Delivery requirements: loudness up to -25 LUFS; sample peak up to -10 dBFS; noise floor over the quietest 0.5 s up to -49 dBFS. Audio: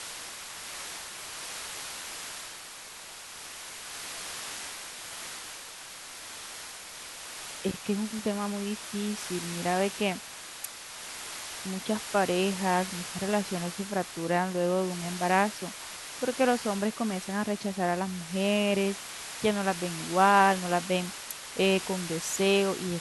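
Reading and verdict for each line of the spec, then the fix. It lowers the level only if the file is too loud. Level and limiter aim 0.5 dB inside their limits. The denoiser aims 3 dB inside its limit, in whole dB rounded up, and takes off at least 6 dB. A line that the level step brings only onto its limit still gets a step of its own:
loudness -30.5 LUFS: pass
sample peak -8.5 dBFS: fail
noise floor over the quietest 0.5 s -45 dBFS: fail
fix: noise reduction 7 dB, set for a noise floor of -45 dBFS; peak limiter -10.5 dBFS

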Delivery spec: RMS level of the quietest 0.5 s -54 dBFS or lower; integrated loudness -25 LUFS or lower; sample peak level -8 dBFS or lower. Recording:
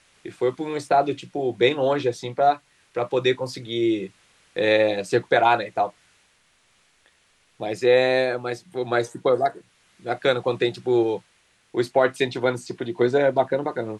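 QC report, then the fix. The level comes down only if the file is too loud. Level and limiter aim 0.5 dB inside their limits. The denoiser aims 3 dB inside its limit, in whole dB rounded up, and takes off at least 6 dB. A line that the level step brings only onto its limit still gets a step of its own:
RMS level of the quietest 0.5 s -62 dBFS: pass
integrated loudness -23.0 LUFS: fail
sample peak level -5.5 dBFS: fail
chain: trim -2.5 dB; peak limiter -8.5 dBFS

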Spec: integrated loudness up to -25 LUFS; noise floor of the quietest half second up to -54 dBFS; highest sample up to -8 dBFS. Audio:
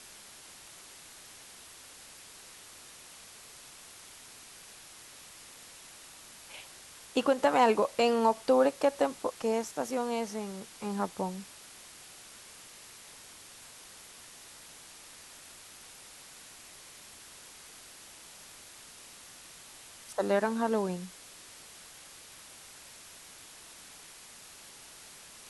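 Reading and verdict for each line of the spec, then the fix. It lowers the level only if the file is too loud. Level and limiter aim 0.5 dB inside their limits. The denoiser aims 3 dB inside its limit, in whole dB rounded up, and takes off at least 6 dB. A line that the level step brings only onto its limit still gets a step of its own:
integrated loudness -29.5 LUFS: pass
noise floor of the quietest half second -51 dBFS: fail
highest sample -13.5 dBFS: pass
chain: noise reduction 6 dB, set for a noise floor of -51 dBFS

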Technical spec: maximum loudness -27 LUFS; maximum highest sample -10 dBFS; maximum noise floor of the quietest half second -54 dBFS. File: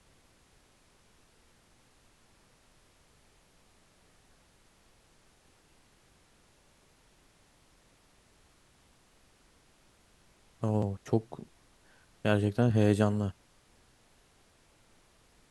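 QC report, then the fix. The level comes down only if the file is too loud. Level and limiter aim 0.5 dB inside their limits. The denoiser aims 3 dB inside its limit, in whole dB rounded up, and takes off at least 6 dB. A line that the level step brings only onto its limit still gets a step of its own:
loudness -29.5 LUFS: pass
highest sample -11.0 dBFS: pass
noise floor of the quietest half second -64 dBFS: pass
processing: none needed

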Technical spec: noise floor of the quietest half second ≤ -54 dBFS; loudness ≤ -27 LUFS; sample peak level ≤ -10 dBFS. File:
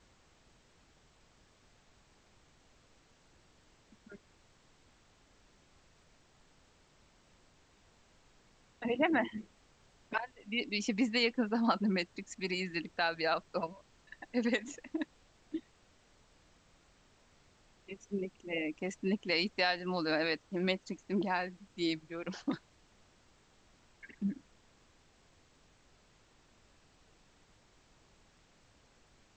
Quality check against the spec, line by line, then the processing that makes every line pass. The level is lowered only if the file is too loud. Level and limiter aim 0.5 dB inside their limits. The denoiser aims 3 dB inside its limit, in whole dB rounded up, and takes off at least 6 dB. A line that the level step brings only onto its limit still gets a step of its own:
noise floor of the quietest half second -66 dBFS: pass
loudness -35.0 LUFS: pass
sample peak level -16.5 dBFS: pass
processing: none needed

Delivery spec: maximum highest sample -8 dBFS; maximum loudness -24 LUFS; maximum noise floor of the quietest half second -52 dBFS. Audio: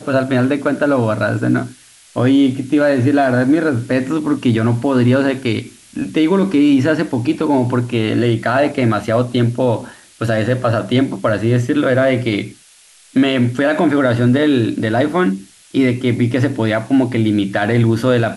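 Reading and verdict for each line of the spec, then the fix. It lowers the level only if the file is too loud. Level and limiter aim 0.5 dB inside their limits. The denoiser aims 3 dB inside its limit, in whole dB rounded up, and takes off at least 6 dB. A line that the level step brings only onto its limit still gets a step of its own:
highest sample -5.0 dBFS: fail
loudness -16.0 LUFS: fail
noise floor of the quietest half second -47 dBFS: fail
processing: trim -8.5 dB

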